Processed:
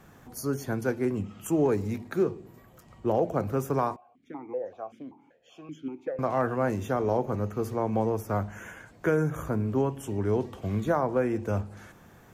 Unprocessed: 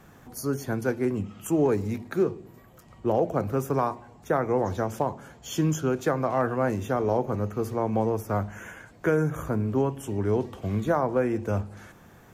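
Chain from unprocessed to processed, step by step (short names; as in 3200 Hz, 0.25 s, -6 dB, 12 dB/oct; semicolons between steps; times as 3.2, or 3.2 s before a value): 3.96–6.19 vowel sequencer 5.2 Hz; gain -1.5 dB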